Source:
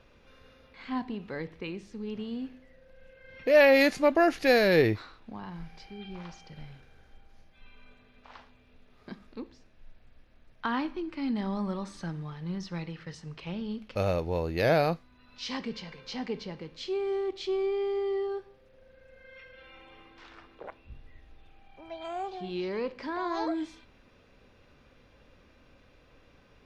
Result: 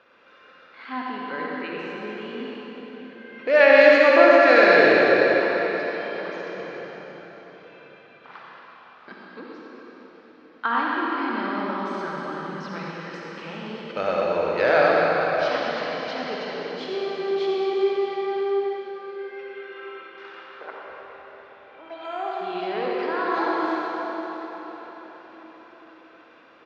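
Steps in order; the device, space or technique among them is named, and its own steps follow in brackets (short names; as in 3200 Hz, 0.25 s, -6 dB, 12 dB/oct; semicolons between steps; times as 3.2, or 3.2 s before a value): station announcement (BPF 350–3900 Hz; bell 1400 Hz +8 dB 0.57 oct; loudspeakers at several distances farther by 31 m -11 dB, 43 m -11 dB; reverb RT60 5.0 s, pre-delay 49 ms, DRR -3.5 dB); 5.43–6.54 HPF 200 Hz 6 dB/oct; gain +2.5 dB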